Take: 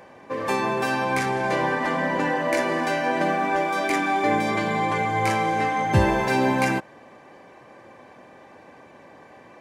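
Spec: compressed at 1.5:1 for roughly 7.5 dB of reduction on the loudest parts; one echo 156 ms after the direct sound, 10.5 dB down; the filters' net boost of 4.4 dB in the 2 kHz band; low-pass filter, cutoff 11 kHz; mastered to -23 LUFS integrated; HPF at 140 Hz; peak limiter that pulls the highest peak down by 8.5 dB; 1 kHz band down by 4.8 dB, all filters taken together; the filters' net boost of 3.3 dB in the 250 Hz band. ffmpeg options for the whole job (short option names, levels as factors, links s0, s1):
-af "highpass=140,lowpass=11000,equalizer=f=250:t=o:g=5,equalizer=f=1000:t=o:g=-8.5,equalizer=f=2000:t=o:g=8,acompressor=threshold=0.0141:ratio=1.5,alimiter=limit=0.0841:level=0:latency=1,aecho=1:1:156:0.299,volume=2.24"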